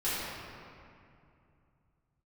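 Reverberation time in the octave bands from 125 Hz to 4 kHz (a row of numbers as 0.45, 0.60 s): n/a, 3.1 s, 2.6 s, 2.5 s, 2.1 s, 1.5 s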